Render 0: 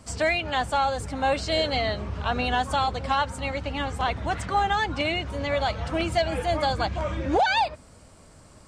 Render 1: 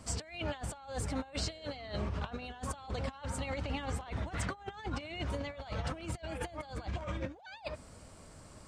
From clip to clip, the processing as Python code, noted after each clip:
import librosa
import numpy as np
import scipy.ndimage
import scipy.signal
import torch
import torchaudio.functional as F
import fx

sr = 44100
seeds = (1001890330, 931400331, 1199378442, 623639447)

y = fx.over_compress(x, sr, threshold_db=-31.0, ratio=-0.5)
y = y * librosa.db_to_amplitude(-7.5)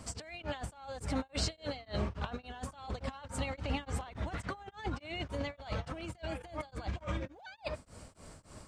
y = x * np.abs(np.cos(np.pi * 3.5 * np.arange(len(x)) / sr))
y = y * librosa.db_to_amplitude(3.0)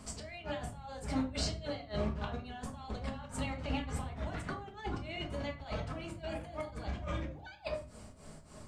y = fx.room_shoebox(x, sr, seeds[0], volume_m3=280.0, walls='furnished', distance_m=1.4)
y = y * librosa.db_to_amplitude(-3.0)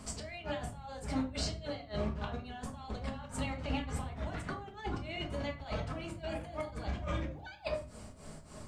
y = fx.rider(x, sr, range_db=3, speed_s=2.0)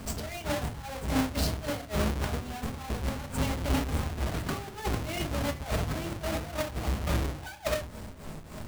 y = fx.halfwave_hold(x, sr)
y = y * librosa.db_to_amplitude(2.5)